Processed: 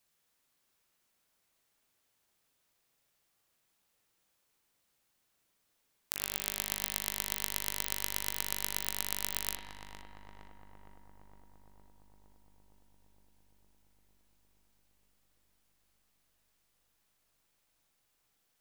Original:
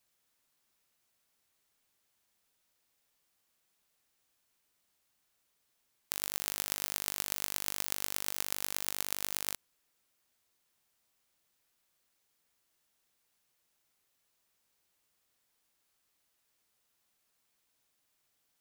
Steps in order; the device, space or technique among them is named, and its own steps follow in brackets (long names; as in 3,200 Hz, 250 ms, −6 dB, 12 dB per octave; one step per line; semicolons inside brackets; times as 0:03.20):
dub delay into a spring reverb (feedback echo with a low-pass in the loop 462 ms, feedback 79%, low-pass 1,400 Hz, level −6 dB; spring reverb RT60 1.2 s, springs 39/45 ms, chirp 50 ms, DRR 5.5 dB)